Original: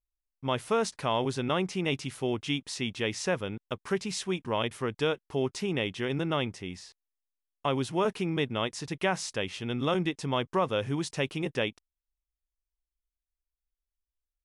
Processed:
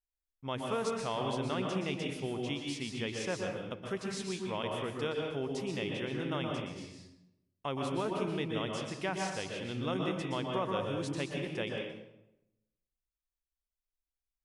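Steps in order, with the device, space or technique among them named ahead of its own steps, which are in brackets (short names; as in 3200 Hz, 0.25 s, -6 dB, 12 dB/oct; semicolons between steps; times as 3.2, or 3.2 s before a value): bathroom (reverb RT60 0.90 s, pre-delay 0.115 s, DRR 1 dB); gain -8 dB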